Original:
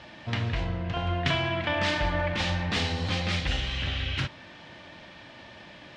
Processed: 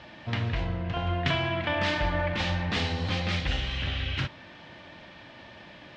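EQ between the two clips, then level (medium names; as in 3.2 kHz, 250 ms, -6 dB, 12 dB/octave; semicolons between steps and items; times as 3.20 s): distance through air 66 m; 0.0 dB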